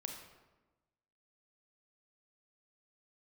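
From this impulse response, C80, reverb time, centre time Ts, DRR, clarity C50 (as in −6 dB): 6.5 dB, 1.2 s, 37 ms, 2.5 dB, 4.5 dB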